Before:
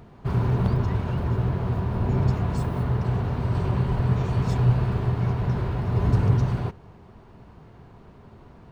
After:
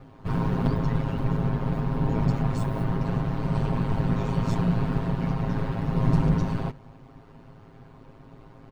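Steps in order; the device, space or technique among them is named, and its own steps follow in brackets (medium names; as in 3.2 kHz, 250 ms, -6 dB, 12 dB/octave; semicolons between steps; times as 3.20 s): ring-modulated robot voice (ring modulator 54 Hz; comb 7.5 ms, depth 93%)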